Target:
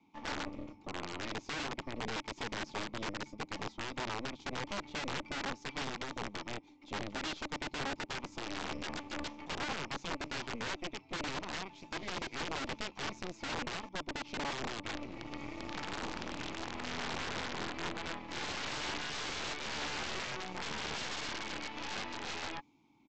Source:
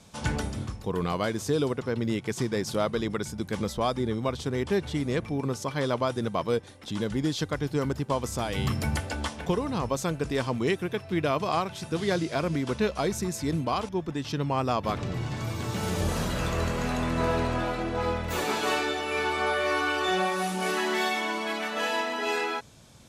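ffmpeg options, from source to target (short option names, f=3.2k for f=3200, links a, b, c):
-filter_complex "[0:a]asplit=3[a][b][c];[a]bandpass=f=300:t=q:w=8,volume=0dB[d];[b]bandpass=f=870:t=q:w=8,volume=-6dB[e];[c]bandpass=f=2.24k:t=q:w=8,volume=-9dB[f];[d][e][f]amix=inputs=3:normalize=0,equalizer=f=1.6k:t=o:w=0.85:g=3,bandreject=f=1.8k:w=8.9,acrossover=split=210|4200[g][h][i];[i]dynaudnorm=f=200:g=9:m=12dB[j];[g][h][j]amix=inputs=3:normalize=0,aeval=exprs='0.0794*(cos(1*acos(clip(val(0)/0.0794,-1,1)))-cos(1*PI/2))+0.000891*(cos(5*acos(clip(val(0)/0.0794,-1,1)))-cos(5*PI/2))+0.000891*(cos(7*acos(clip(val(0)/0.0794,-1,1)))-cos(7*PI/2))+0.02*(cos(8*acos(clip(val(0)/0.0794,-1,1)))-cos(8*PI/2))':c=same,aresample=16000,aeval=exprs='(mod(28.2*val(0)+1,2)-1)/28.2':c=same,aresample=44100,acrossover=split=5400[k][l];[l]acompressor=threshold=-58dB:ratio=4:attack=1:release=60[m];[k][m]amix=inputs=2:normalize=0"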